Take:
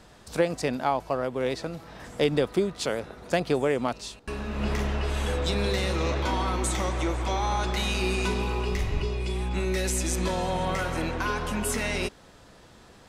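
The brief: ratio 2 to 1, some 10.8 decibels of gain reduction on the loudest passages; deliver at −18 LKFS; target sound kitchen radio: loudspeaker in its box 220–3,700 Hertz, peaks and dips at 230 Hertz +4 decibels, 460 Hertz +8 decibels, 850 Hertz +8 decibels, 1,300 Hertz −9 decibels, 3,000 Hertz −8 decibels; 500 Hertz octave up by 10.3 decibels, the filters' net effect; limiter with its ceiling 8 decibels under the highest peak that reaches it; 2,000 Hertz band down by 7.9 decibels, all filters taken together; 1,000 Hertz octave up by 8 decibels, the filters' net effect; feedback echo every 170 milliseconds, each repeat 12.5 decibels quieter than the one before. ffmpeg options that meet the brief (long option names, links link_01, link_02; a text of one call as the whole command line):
ffmpeg -i in.wav -af "equalizer=frequency=500:width_type=o:gain=6,equalizer=frequency=1000:width_type=o:gain=4,equalizer=frequency=2000:width_type=o:gain=-8.5,acompressor=threshold=-34dB:ratio=2,alimiter=level_in=0.5dB:limit=-24dB:level=0:latency=1,volume=-0.5dB,highpass=220,equalizer=frequency=230:width_type=q:width=4:gain=4,equalizer=frequency=460:width_type=q:width=4:gain=8,equalizer=frequency=850:width_type=q:width=4:gain=8,equalizer=frequency=1300:width_type=q:width=4:gain=-9,equalizer=frequency=3000:width_type=q:width=4:gain=-8,lowpass=frequency=3700:width=0.5412,lowpass=frequency=3700:width=1.3066,aecho=1:1:170|340|510:0.237|0.0569|0.0137,volume=13.5dB" out.wav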